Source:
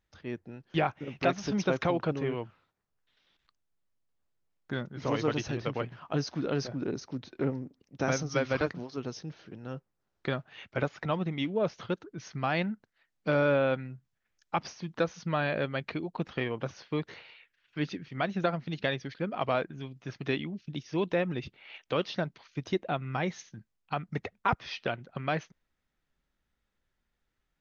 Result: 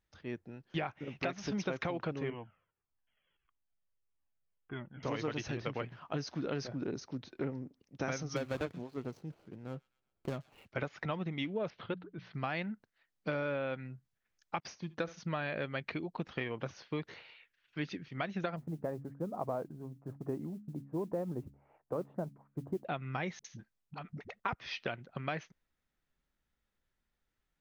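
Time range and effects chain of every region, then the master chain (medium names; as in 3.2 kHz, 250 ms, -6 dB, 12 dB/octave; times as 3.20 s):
2.30–5.03 s: brick-wall FIR low-pass 3.4 kHz + Shepard-style flanger falling 1.6 Hz
8.36–10.68 s: median filter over 25 samples + feedback echo behind a high-pass 125 ms, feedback 49%, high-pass 2.2 kHz, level -18.5 dB
11.70–12.34 s: steep low-pass 4 kHz + hum notches 60/120/180 Hz
14.60–15.25 s: gate -51 dBFS, range -27 dB + flutter echo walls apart 12 m, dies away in 0.22 s
18.56–22.85 s: low-pass 1 kHz 24 dB/octave + modulation noise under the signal 32 dB + de-hum 69.61 Hz, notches 4
23.39–24.40 s: compression 10:1, threshold -35 dBFS + phase dispersion highs, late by 54 ms, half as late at 320 Hz
whole clip: dynamic bell 2.1 kHz, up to +4 dB, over -46 dBFS, Q 1.7; compression, threshold -28 dBFS; trim -3.5 dB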